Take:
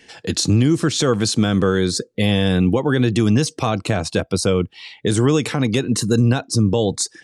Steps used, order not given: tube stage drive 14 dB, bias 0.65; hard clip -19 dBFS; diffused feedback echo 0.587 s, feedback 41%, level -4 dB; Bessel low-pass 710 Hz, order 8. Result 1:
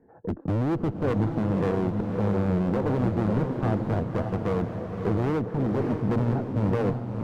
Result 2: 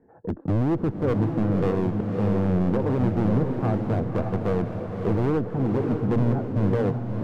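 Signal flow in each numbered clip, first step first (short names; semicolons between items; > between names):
Bessel low-pass > hard clip > diffused feedback echo > tube stage; Bessel low-pass > tube stage > hard clip > diffused feedback echo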